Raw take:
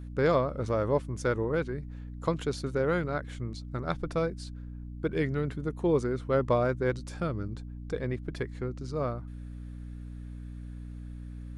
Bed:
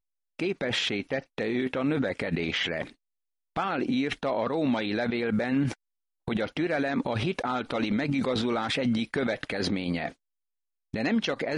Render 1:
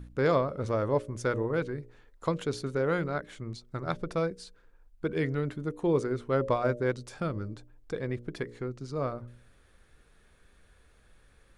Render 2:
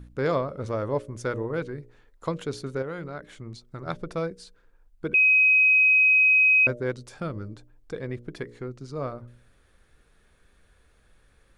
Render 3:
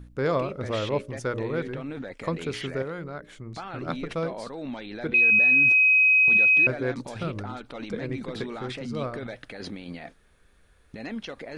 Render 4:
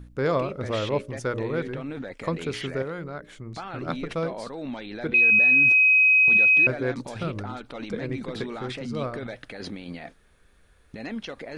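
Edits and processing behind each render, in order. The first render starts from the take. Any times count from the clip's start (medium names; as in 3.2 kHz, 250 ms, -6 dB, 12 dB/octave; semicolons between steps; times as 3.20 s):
de-hum 60 Hz, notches 10
2.82–3.86 s: compression 2.5:1, threshold -33 dBFS; 5.14–6.67 s: bleep 2.53 kHz -15 dBFS
add bed -9 dB
trim +1 dB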